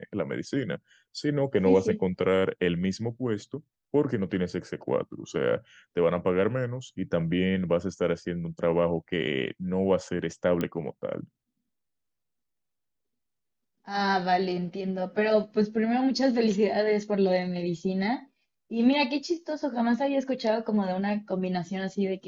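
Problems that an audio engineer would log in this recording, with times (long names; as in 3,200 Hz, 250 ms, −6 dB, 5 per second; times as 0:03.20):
0:10.61: click −16 dBFS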